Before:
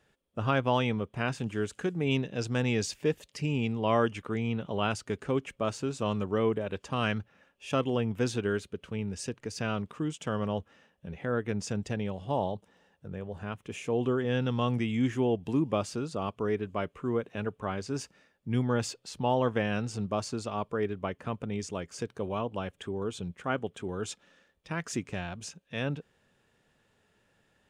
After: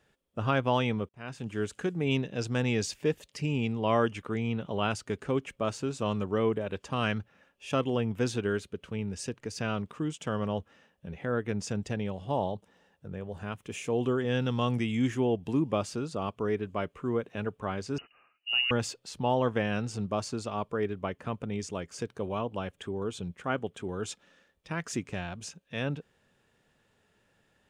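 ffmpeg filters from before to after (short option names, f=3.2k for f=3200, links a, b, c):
-filter_complex "[0:a]asettb=1/sr,asplit=3[a][b][c];[a]atrim=end=13.284[d];[b]atrim=start=13.28:end=15.15,asetpts=PTS-STARTPTS,afade=t=in:d=0.004:c=qsin,afade=t=out:st=1.866:d=0.004:c=qsin,highshelf=f=4.9k:g=6[e];[c]atrim=start=15.146[f];[d][e]acrossfade=d=0.004:c1=hsin:c2=qsin[g];[g][f]acrossfade=d=0.004:c1=qsin:c2=hsin,asettb=1/sr,asplit=3[h][i][j];[h]atrim=end=17.984[k];[i]atrim=start=17.98:end=18.71,asetpts=PTS-STARTPTS,afade=t=in:d=0.004:c=qsin,afade=t=out:st=0.726:d=0.004:c=qsin,lowpass=f=2.6k:t=q:w=0.5098,lowpass=f=2.6k:t=q:w=0.6013,lowpass=f=2.6k:t=q:w=0.9,lowpass=f=2.6k:t=q:w=2.563,afreqshift=-3000[l];[j]atrim=start=18.706[m];[k][l]acrossfade=d=0.004:c1=hsin:c2=qsin[n];[n][m]acrossfade=d=0.004:c1=qsin:c2=hsin,asplit=2[o][p];[o]atrim=end=1.09,asetpts=PTS-STARTPTS,afade=t=out:st=1.086:d=0.004:c=hsin[q];[p]atrim=start=1.09,asetpts=PTS-STARTPTS,afade=t=in:d=0.54[r];[q][r]concat=n=2:v=0:a=1"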